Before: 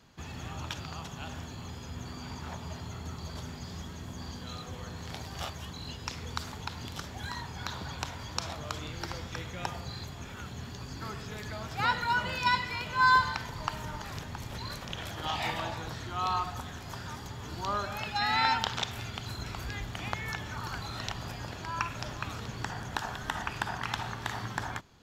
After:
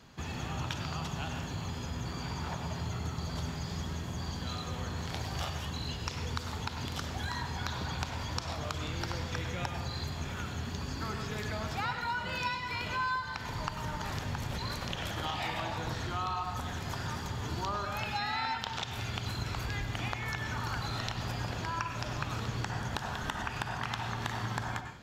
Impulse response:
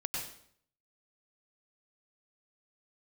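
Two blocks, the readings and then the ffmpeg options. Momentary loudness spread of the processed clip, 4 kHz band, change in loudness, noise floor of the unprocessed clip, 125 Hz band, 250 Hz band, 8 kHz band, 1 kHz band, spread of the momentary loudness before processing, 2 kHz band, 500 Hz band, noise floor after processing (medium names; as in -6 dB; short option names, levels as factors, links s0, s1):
4 LU, -1.5 dB, -1.5 dB, -44 dBFS, +3.0 dB, +2.0 dB, 0.0 dB, -4.0 dB, 13 LU, -3.5 dB, +1.0 dB, -40 dBFS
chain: -filter_complex "[0:a]acompressor=threshold=0.0158:ratio=6,asplit=2[s0][s1];[1:a]atrim=start_sample=2205,highshelf=f=10000:g=-11[s2];[s1][s2]afir=irnorm=-1:irlink=0,volume=0.668[s3];[s0][s3]amix=inputs=2:normalize=0"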